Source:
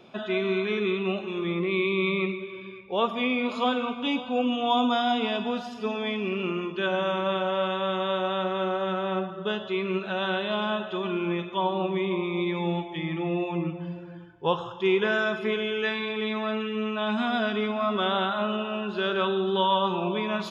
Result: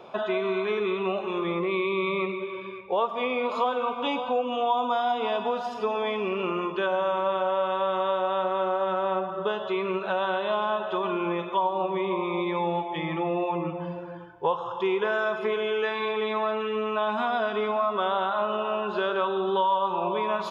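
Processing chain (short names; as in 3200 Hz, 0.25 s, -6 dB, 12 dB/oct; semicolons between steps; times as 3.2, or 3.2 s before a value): graphic EQ 250/500/1000 Hz -5/+8/+11 dB; compressor 3:1, threshold -25 dBFS, peak gain reduction 12.5 dB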